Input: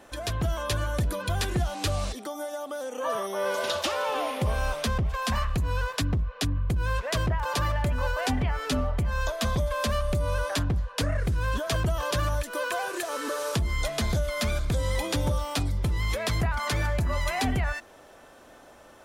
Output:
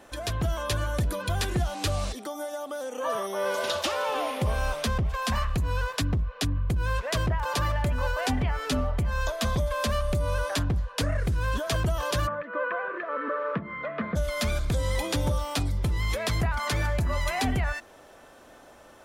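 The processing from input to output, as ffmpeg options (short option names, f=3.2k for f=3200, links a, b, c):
-filter_complex "[0:a]asplit=3[a][b][c];[a]afade=t=out:st=12.26:d=0.02[d];[b]highpass=f=160:w=0.5412,highpass=f=160:w=1.3066,equalizer=f=190:t=q:w=4:g=5,equalizer=f=370:t=q:w=4:g=-5,equalizer=f=540:t=q:w=4:g=4,equalizer=f=780:t=q:w=4:g=-10,equalizer=f=1.2k:t=q:w=4:g=6,equalizer=f=1.9k:t=q:w=4:g=3,lowpass=f=2k:w=0.5412,lowpass=f=2k:w=1.3066,afade=t=in:st=12.26:d=0.02,afade=t=out:st=14.15:d=0.02[e];[c]afade=t=in:st=14.15:d=0.02[f];[d][e][f]amix=inputs=3:normalize=0"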